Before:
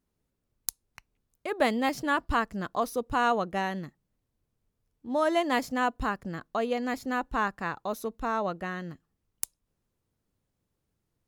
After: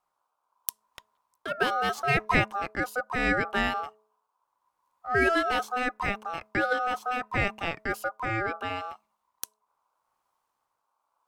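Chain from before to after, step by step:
rotating-speaker cabinet horn 0.75 Hz
ring modulation 1,000 Hz
hum removal 214.8 Hz, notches 3
level +6.5 dB

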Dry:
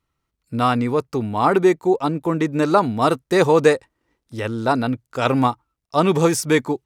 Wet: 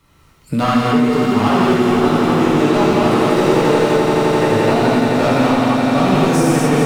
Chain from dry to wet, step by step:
hard clipping −17.5 dBFS, distortion −7 dB
echo that builds up and dies away 86 ms, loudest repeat 8, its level −11 dB
reverb whose tail is shaped and stops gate 290 ms flat, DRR −8 dB
multiband upward and downward compressor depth 70%
level −3.5 dB

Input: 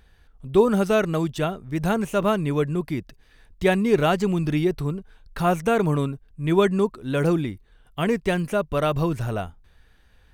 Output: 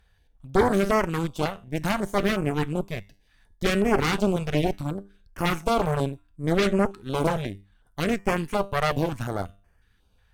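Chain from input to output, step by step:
tuned comb filter 99 Hz, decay 0.41 s, harmonics all, mix 60%
harmonic generator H 8 −9 dB, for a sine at −10 dBFS
notch on a step sequencer 5.5 Hz 300–3,800 Hz

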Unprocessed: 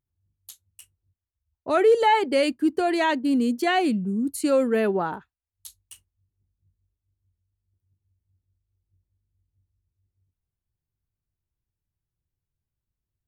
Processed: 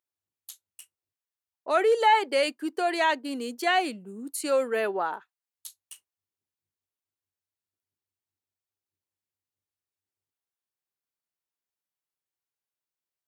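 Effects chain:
high-pass filter 540 Hz 12 dB per octave

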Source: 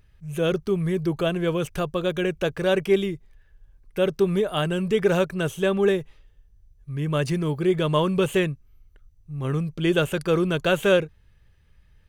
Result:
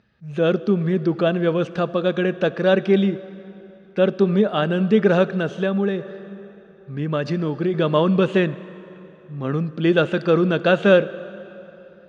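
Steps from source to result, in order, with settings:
loudspeaker in its box 210–4,400 Hz, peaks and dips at 210 Hz +9 dB, 400 Hz −4 dB, 990 Hz −5 dB, 2,200 Hz −7 dB, 3,100 Hz −7 dB
dense smooth reverb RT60 3.4 s, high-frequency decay 0.75×, DRR 15.5 dB
0:05.36–0:07.74: downward compressor 5 to 1, threshold −24 dBFS, peak gain reduction 7.5 dB
level +6 dB

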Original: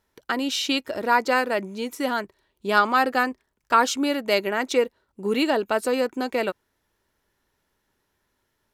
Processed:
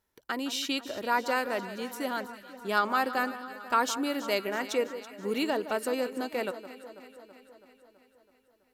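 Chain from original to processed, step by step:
high-shelf EQ 11,000 Hz +9 dB
delay that swaps between a low-pass and a high-pass 164 ms, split 1,500 Hz, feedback 78%, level −12 dB
level −7.5 dB

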